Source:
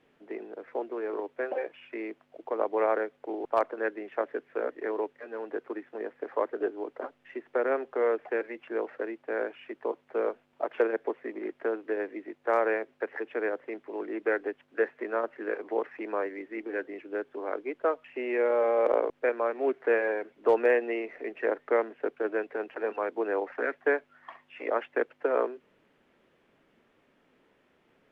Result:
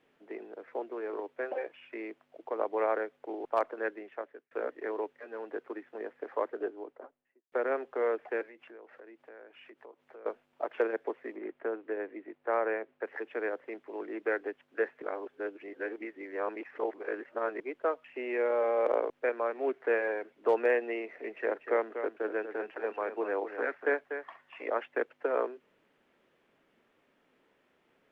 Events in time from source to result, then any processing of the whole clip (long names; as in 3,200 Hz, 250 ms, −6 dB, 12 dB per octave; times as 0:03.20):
0:03.89–0:04.51: fade out
0:06.41–0:07.52: fade out and dull
0:08.43–0:10.26: downward compressor 4 to 1, threshold −47 dBFS
0:11.36–0:13.05: high-frequency loss of the air 260 metres
0:15.02–0:17.60: reverse
0:20.99–0:24.67: single-tap delay 242 ms −9 dB
whole clip: low-shelf EQ 220 Hz −6 dB; level −2.5 dB